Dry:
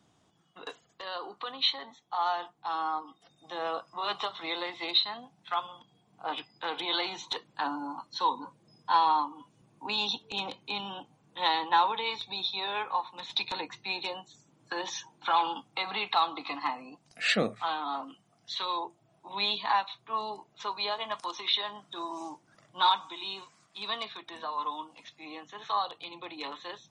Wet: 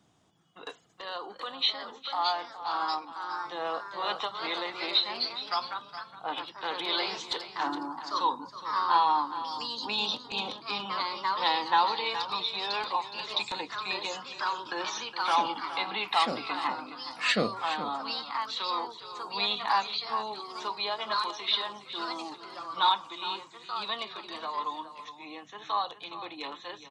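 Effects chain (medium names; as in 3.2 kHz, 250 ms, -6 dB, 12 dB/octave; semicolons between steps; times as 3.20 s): ever faster or slower copies 797 ms, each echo +2 st, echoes 2, each echo -6 dB; delay 416 ms -12.5 dB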